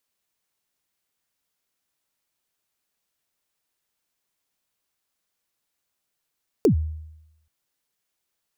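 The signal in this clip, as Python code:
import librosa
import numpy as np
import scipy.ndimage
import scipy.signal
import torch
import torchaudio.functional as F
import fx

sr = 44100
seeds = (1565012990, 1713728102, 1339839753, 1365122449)

y = fx.drum_kick(sr, seeds[0], length_s=0.83, level_db=-11.5, start_hz=490.0, end_hz=78.0, sweep_ms=101.0, decay_s=0.89, click=True)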